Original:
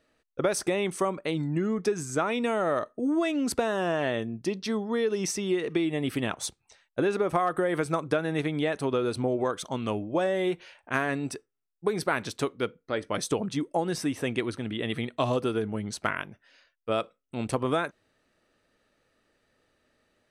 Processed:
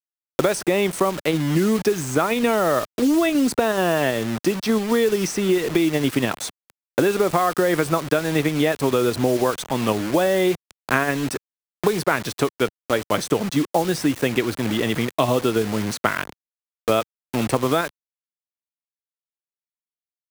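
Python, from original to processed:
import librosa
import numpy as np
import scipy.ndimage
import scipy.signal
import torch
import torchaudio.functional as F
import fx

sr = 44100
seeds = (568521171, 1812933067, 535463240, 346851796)

p1 = fx.level_steps(x, sr, step_db=14)
p2 = x + F.gain(torch.from_numpy(p1), -2.5).numpy()
p3 = fx.quant_dither(p2, sr, seeds[0], bits=6, dither='none')
p4 = fx.band_squash(p3, sr, depth_pct=70)
y = F.gain(torch.from_numpy(p4), 3.5).numpy()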